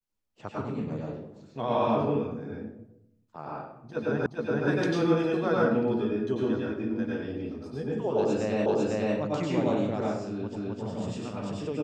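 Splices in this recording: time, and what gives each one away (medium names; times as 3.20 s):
4.26 s: repeat of the last 0.42 s
8.66 s: repeat of the last 0.5 s
10.56 s: repeat of the last 0.26 s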